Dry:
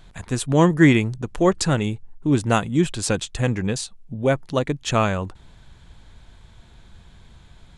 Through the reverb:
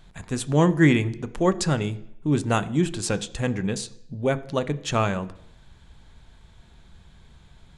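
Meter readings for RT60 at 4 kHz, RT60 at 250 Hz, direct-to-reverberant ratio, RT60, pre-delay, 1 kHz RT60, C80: 0.70 s, 0.70 s, 12.0 dB, 0.70 s, 3 ms, 0.75 s, 20.5 dB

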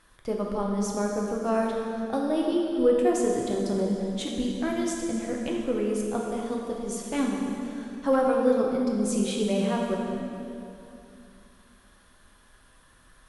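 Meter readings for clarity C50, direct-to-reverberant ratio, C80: 1.0 dB, -1.5 dB, 2.0 dB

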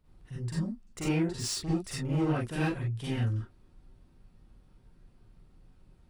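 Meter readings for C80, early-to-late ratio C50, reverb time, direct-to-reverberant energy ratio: 5.5 dB, -3.5 dB, not exponential, -8.5 dB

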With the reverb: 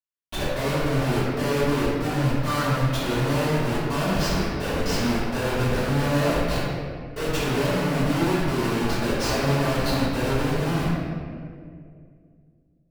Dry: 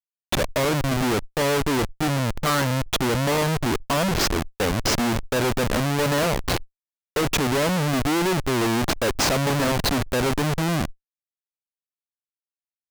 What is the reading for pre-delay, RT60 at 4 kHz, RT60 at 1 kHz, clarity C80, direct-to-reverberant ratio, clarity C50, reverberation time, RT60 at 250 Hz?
3 ms, 1.2 s, 1.8 s, -1.0 dB, -15.5 dB, -3.5 dB, 2.2 s, 2.8 s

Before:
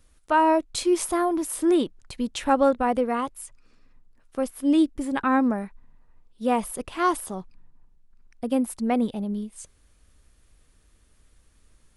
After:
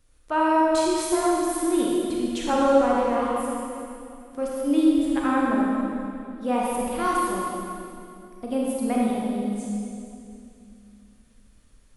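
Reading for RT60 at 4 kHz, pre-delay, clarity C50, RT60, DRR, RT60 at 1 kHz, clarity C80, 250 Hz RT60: 2.4 s, 28 ms, -3.0 dB, 2.6 s, -4.5 dB, 2.4 s, -1.0 dB, 3.2 s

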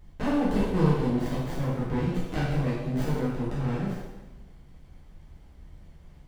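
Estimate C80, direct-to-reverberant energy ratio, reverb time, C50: 2.5 dB, -8.5 dB, 1.1 s, -0.5 dB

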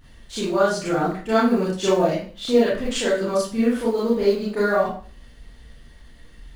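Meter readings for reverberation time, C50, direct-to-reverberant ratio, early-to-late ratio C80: 0.45 s, 2.0 dB, -9.0 dB, 7.5 dB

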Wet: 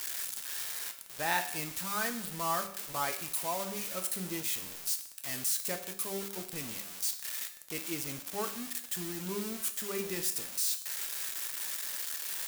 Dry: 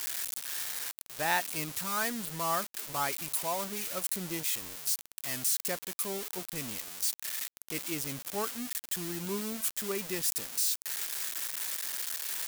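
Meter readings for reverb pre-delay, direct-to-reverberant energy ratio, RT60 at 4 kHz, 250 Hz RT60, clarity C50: 5 ms, 6.0 dB, 0.70 s, 0.70 s, 10.5 dB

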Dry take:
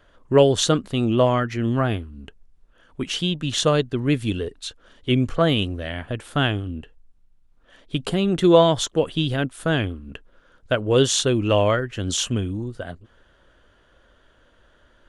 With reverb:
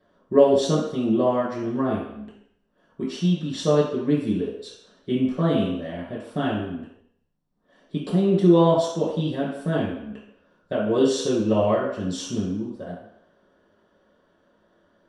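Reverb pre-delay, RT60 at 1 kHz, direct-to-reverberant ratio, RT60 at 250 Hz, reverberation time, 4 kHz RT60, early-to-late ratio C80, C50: 3 ms, 0.80 s, -6.5 dB, 0.55 s, 0.75 s, 0.70 s, 6.0 dB, 2.5 dB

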